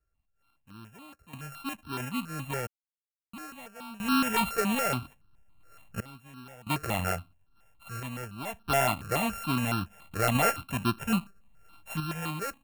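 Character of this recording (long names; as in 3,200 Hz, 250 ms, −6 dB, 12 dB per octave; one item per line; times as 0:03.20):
a buzz of ramps at a fixed pitch in blocks of 32 samples
sample-and-hold tremolo 1.5 Hz, depth 100%
notches that jump at a steady rate 7.1 Hz 940–2,000 Hz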